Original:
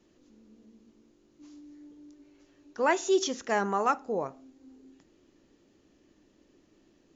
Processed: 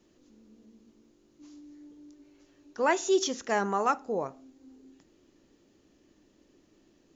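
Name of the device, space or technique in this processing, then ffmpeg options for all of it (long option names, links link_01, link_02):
exciter from parts: -filter_complex "[0:a]asplit=2[link_01][link_02];[link_02]highpass=3000,asoftclip=type=tanh:threshold=-27.5dB,volume=-11.5dB[link_03];[link_01][link_03]amix=inputs=2:normalize=0"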